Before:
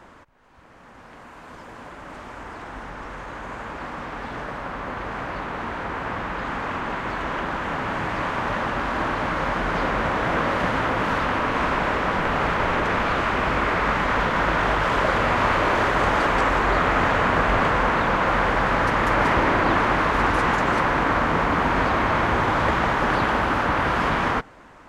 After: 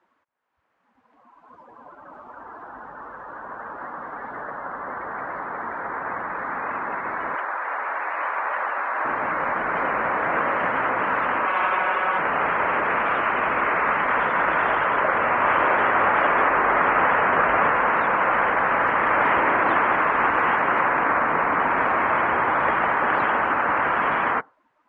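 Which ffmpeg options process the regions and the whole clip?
ffmpeg -i in.wav -filter_complex "[0:a]asettb=1/sr,asplit=3[link_01][link_02][link_03];[link_01]atrim=end=7.354[link_04];[link_02]atrim=start=7.35:end=9.05,asetpts=PTS-STARTPTS,afade=type=in:duration=0.004:curve=qsin,afade=type=out:start_time=1.696:duration=0.004:curve=qsin,highpass=520,bandreject=frequency=5500:width=23[link_05];[link_03]atrim=start=9.046[link_06];[link_04][link_05]acrossfade=duration=0.004:curve1=hsin:curve2=qsin[link_07];[link_07][link_06]acrossfade=duration=0.004:curve1=qsin:curve2=hsin,asettb=1/sr,asplit=3[link_08][link_09][link_10];[link_08]atrim=end=11.454[link_11];[link_09]atrim=start=11.45:end=12.19,asetpts=PTS-STARTPTS,afade=type=in:duration=0.004:curve=qsin,afade=type=out:start_time=0.736:duration=0.004:curve=qsin,equalizer=frequency=160:width=0.55:gain=-9.5,bandreject=frequency=1900:width=17,aecho=1:1:5.4:0.68,atrim=end_sample=32634[link_12];[link_10]atrim=start=12.186[link_13];[link_11][link_12]acrossfade=duration=0.004:curve1=hsin:curve2=qsin[link_14];[link_14][link_13]acrossfade=duration=0.004:curve1=qsin:curve2=hsin,asettb=1/sr,asplit=3[link_15][link_16][link_17];[link_15]atrim=end=14.844[link_18];[link_16]atrim=start=14.84:end=17.71,asetpts=PTS-STARTPTS,afade=type=in:duration=0.004:curve=qsin,afade=type=out:start_time=2.866:duration=0.004:curve=qsin,highshelf=frequency=6300:gain=-11,aecho=1:1:623:0.562,atrim=end_sample=126567[link_19];[link_17]atrim=start=17.706[link_20];[link_18][link_19]acrossfade=duration=0.004:curve1=hsin:curve2=qsin[link_21];[link_21][link_20]acrossfade=duration=0.004:curve1=qsin:curve2=hsin,lowpass=frequency=2500:poles=1,afftdn=noise_reduction=22:noise_floor=-35,highpass=frequency=880:poles=1,volume=4.5dB" out.wav

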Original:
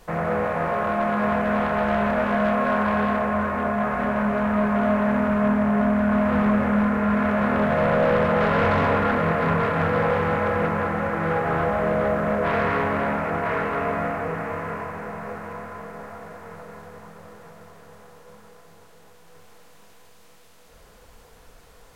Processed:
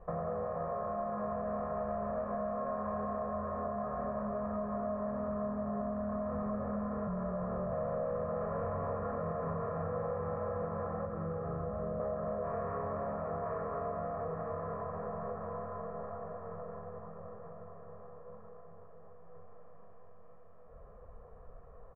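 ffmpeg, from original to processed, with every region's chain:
ffmpeg -i in.wav -filter_complex "[0:a]asettb=1/sr,asplit=3[link_01][link_02][link_03];[link_01]atrim=end=7.074[link_04];[link_02]atrim=start=7.07:end=7.73,asetpts=PTS-STARTPTS,afade=type=in:duration=0.004:curve=qsin,afade=type=out:start_time=0.656:duration=0.004:curve=qsin,afreqshift=-26,asoftclip=type=hard:threshold=-17.5dB,highshelf=frequency=2500:gain=-8[link_05];[link_03]atrim=start=7.726[link_06];[link_04][link_05]acrossfade=duration=0.004:curve1=hsin:curve2=qsin[link_07];[link_07][link_06]acrossfade=duration=0.004:curve1=qsin:curve2=hsin,asettb=1/sr,asplit=3[link_08][link_09][link_10];[link_08]atrim=end=11.054[link_11];[link_09]atrim=start=11.05:end=12,asetpts=PTS-STARTPTS,afade=type=in:duration=0.004:curve=qsin,afade=type=out:start_time=0.946:duration=0.004:curve=qsin,equalizer=frequency=1300:width_type=o:width=0.69:gain=6.5,acrossover=split=470|3000[link_12][link_13][link_14];[link_13]acompressor=threshold=-37dB:ratio=3:attack=3.2:release=140:knee=2.83:detection=peak[link_15];[link_12][link_15][link_14]amix=inputs=3:normalize=0[link_16];[link_10]atrim=start=11.996[link_17];[link_11][link_16]acrossfade=duration=0.004:curve1=hsin:curve2=qsin[link_18];[link_18][link_17]acrossfade=duration=0.004:curve1=qsin:curve2=hsin,lowpass=frequency=1200:width=0.5412,lowpass=frequency=1200:width=1.3066,aecho=1:1:1.7:0.61,acompressor=threshold=-31dB:ratio=4,volume=-4.5dB" out.wav

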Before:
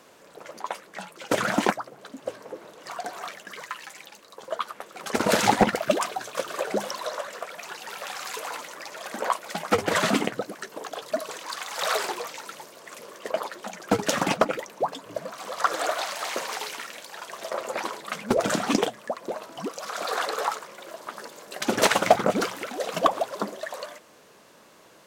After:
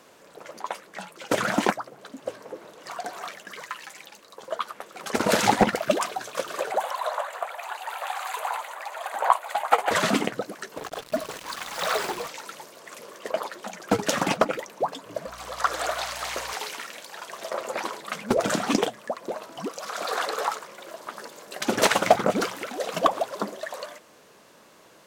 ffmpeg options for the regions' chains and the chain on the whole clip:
ffmpeg -i in.wav -filter_complex "[0:a]asettb=1/sr,asplit=3[link_01][link_02][link_03];[link_01]atrim=end=6.714[link_04];[link_02]atrim=start=6.71:end=9.91,asetpts=PTS-STARTPTS,afade=type=in:duration=0.004:curve=qsin,afade=type=out:start_time=3.196:duration=0.004:curve=qsin,highpass=frequency=780:width_type=q:width=2.9,equalizer=frequency=5400:width=3.2:gain=-14,aecho=1:1:675:0.0891,atrim=end_sample=141120[link_05];[link_03]atrim=start=9.906[link_06];[link_04][link_05]acrossfade=duration=0.004:curve1=hsin:curve2=qsin[link_07];[link_07][link_06]acrossfade=duration=0.004:curve1=qsin:curve2=hsin,asettb=1/sr,asplit=3[link_08][link_09][link_10];[link_08]atrim=end=10.774[link_11];[link_09]atrim=start=10.77:end=12.28,asetpts=PTS-STARTPTS,afade=type=in:duration=0.004:curve=qsin,afade=type=out:start_time=1.506:duration=0.004:curve=qsin,bass=frequency=250:gain=11,treble=frequency=4000:gain=-3,acrusher=bits=5:mix=0:aa=0.5[link_12];[link_10]atrim=start=12.276[link_13];[link_11][link_12]acrossfade=duration=0.004:curve1=hsin:curve2=qsin[link_14];[link_14][link_13]acrossfade=duration=0.004:curve1=qsin:curve2=hsin,asettb=1/sr,asplit=3[link_15][link_16][link_17];[link_15]atrim=end=15.264[link_18];[link_16]atrim=start=15.26:end=16.54,asetpts=PTS-STARTPTS,afade=type=in:duration=0.004:curve=qsin,afade=type=out:start_time=1.276:duration=0.004:curve=qsin,lowshelf=frequency=300:gain=-10.5,aeval=exprs='val(0)+0.00316*(sin(2*PI*60*n/s)+sin(2*PI*2*60*n/s)/2+sin(2*PI*3*60*n/s)/3+sin(2*PI*4*60*n/s)/4+sin(2*PI*5*60*n/s)/5)':channel_layout=same[link_19];[link_17]atrim=start=16.536[link_20];[link_18][link_19]acrossfade=duration=0.004:curve1=hsin:curve2=qsin[link_21];[link_21][link_20]acrossfade=duration=0.004:curve1=qsin:curve2=hsin" out.wav

